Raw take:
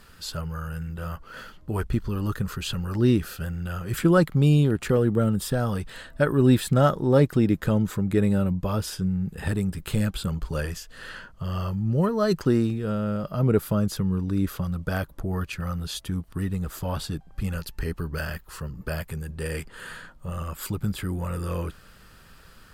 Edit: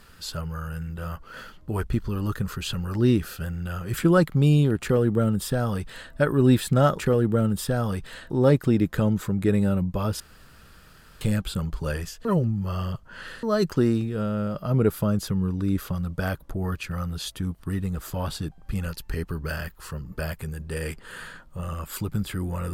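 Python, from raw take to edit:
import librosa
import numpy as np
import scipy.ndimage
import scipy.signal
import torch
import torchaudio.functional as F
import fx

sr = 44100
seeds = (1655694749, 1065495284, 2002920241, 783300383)

y = fx.edit(x, sr, fx.duplicate(start_s=4.82, length_s=1.31, to_s=6.99),
    fx.room_tone_fill(start_s=8.89, length_s=1.01),
    fx.reverse_span(start_s=10.94, length_s=1.18), tone=tone)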